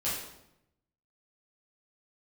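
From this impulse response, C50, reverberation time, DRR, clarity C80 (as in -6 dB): 1.5 dB, 0.80 s, -10.0 dB, 5.0 dB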